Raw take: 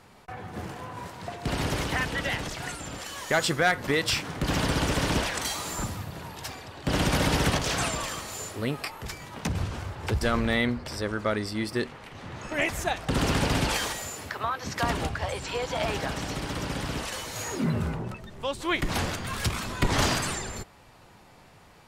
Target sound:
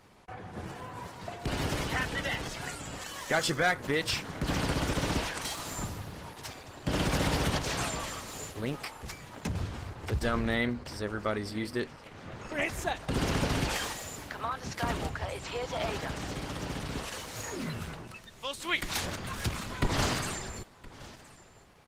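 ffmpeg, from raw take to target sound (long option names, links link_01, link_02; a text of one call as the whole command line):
ffmpeg -i in.wav -filter_complex "[0:a]asplit=3[link_01][link_02][link_03];[link_01]afade=type=out:start_time=17.59:duration=0.02[link_04];[link_02]tiltshelf=frequency=1300:gain=-7,afade=type=in:start_time=17.59:duration=0.02,afade=type=out:start_time=19.04:duration=0.02[link_05];[link_03]afade=type=in:start_time=19.04:duration=0.02[link_06];[link_04][link_05][link_06]amix=inputs=3:normalize=0,asplit=2[link_07][link_08];[link_08]aecho=0:1:1019:0.106[link_09];[link_07][link_09]amix=inputs=2:normalize=0,volume=-3.5dB" -ar 48000 -c:a libopus -b:a 16k out.opus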